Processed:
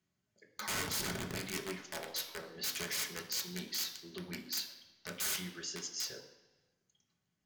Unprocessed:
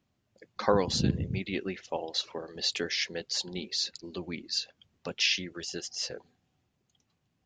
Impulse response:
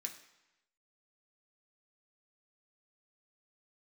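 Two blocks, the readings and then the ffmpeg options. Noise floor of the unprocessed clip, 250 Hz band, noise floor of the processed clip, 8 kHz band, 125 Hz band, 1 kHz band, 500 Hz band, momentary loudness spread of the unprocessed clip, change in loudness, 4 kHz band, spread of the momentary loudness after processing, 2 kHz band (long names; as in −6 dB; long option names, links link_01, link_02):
−77 dBFS, −10.5 dB, −84 dBFS, 0.0 dB, −12.0 dB, −9.5 dB, −13.0 dB, 13 LU, −7.0 dB, −8.0 dB, 10 LU, −5.0 dB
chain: -filter_complex "[0:a]aeval=exprs='(mod(17.8*val(0)+1,2)-1)/17.8':channel_layout=same[link_01];[1:a]atrim=start_sample=2205,asetrate=37485,aresample=44100[link_02];[link_01][link_02]afir=irnorm=-1:irlink=0,volume=-3.5dB"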